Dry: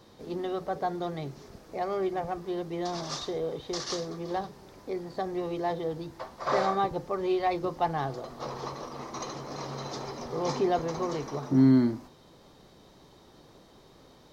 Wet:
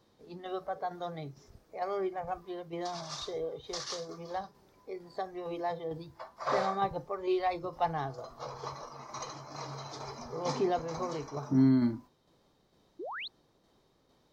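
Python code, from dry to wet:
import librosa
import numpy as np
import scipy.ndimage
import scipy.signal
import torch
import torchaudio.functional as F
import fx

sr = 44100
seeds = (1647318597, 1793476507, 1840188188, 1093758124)

y = fx.noise_reduce_blind(x, sr, reduce_db=10)
y = fx.tremolo_shape(y, sr, shape='saw_down', hz=2.2, depth_pct=40)
y = fx.spec_paint(y, sr, seeds[0], shape='rise', start_s=12.99, length_s=0.29, low_hz=300.0, high_hz=4500.0, level_db=-38.0)
y = F.gain(torch.from_numpy(y), -1.5).numpy()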